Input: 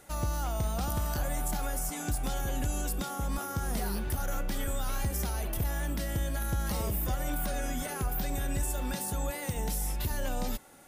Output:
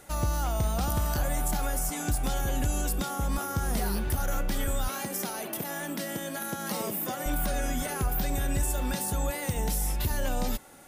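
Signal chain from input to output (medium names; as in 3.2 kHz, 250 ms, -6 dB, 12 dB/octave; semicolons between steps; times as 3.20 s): 4.88–7.26 s: high-pass 180 Hz 24 dB/octave; trim +3.5 dB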